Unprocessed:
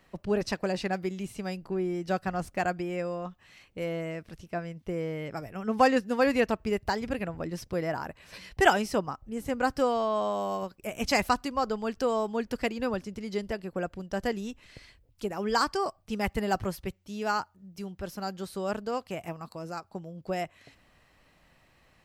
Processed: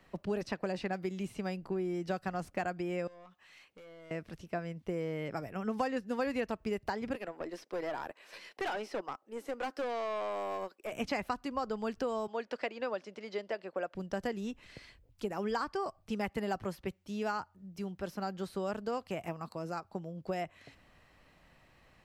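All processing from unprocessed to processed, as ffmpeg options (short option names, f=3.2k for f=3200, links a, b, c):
-filter_complex "[0:a]asettb=1/sr,asplit=3[a][b][c];[a]atrim=end=3.074[d];[b]atrim=start=3.07:end=4.11,asetpts=PTS-STARTPTS,afade=t=in:d=0.004:c=qsin,afade=t=out:st=1.036:d=0.004:c=qsin,highpass=f=720:p=1,acompressor=threshold=-45dB:ratio=6:attack=3.2:release=140:knee=1:detection=peak,aeval=exprs='(tanh(282*val(0)+0.15)-tanh(0.15))/282':c=same[e];[c]atrim=start=4.106[f];[d][e]acrossfade=d=0.004:c1=hsin:c2=qsin[g];[g][f]acrossfade=d=0.004:c1=qsin:c2=hsin,asettb=1/sr,asplit=3[h][i][j];[h]atrim=end=7.154[k];[i]atrim=start=7.15:end=10.92,asetpts=PTS-STARTPTS,afade=t=in:d=0.004:c=qsin,afade=t=out:st=3.766:d=0.004:c=qsin,highpass=f=320:w=0.5412,highpass=f=320:w=1.3066,acrossover=split=5900[l][m];[m]acompressor=threshold=-50dB:ratio=4:attack=1:release=60[n];[l][n]amix=inputs=2:normalize=0,aeval=exprs='(tanh(28.2*val(0)+0.5)-tanh(0.5))/28.2':c=same[o];[j]atrim=start=10.916[p];[k][o]acrossfade=d=0.004:c1=hsin:c2=qsin[q];[q][p]acrossfade=d=0.004:c1=qsin:c2=hsin,asettb=1/sr,asplit=3[r][s][t];[r]atrim=end=12.274[u];[s]atrim=start=12.27:end=13.95,asetpts=PTS-STARTPTS,afade=t=in:d=0.004:c=qsin,afade=t=out:st=1.676:d=0.004:c=qsin,highpass=450,lowpass=5k,equalizer=f=600:w=5.9:g=6[v];[t]atrim=start=13.946[w];[u][v]acrossfade=d=0.004:c1=hsin:c2=qsin[x];[x][w]acrossfade=d=0.004:c1=qsin:c2=hsin,acrossover=split=130|3500[y][z][aa];[y]acompressor=threshold=-57dB:ratio=4[ab];[z]acompressor=threshold=-32dB:ratio=4[ac];[aa]acompressor=threshold=-52dB:ratio=4[ad];[ab][ac][ad]amix=inputs=3:normalize=0,highshelf=f=4.7k:g=-5"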